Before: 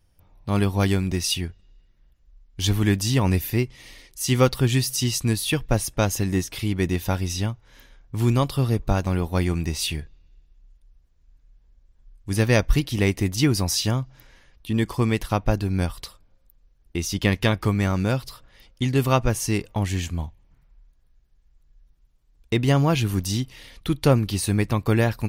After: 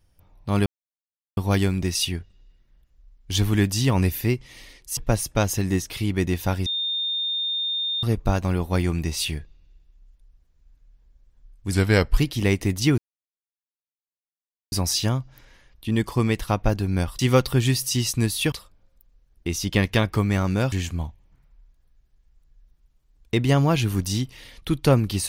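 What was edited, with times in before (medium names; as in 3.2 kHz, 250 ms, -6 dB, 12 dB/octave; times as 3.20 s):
0.66 s: insert silence 0.71 s
4.26–5.59 s: move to 16.01 s
7.28–8.65 s: bleep 3.64 kHz -23 dBFS
12.34–12.74 s: speed 87%
13.54 s: insert silence 1.74 s
18.21–19.91 s: delete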